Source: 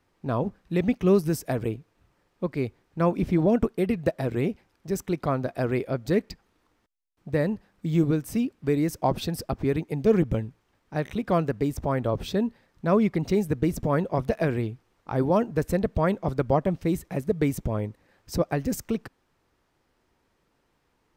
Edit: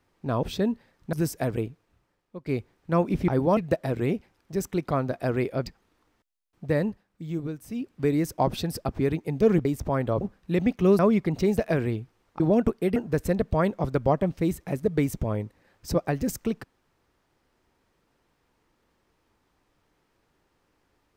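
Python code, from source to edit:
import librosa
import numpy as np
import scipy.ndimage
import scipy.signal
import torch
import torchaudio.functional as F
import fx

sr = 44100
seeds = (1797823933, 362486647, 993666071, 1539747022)

y = fx.edit(x, sr, fx.swap(start_s=0.43, length_s=0.78, other_s=12.18, other_length_s=0.7),
    fx.fade_out_to(start_s=1.72, length_s=0.82, floor_db=-15.5),
    fx.swap(start_s=3.36, length_s=0.56, other_s=15.11, other_length_s=0.29),
    fx.cut(start_s=6.01, length_s=0.29),
    fx.fade_down_up(start_s=7.51, length_s=1.04, db=-9.0, fade_s=0.17),
    fx.cut(start_s=10.29, length_s=1.33),
    fx.cut(start_s=13.46, length_s=0.82), tone=tone)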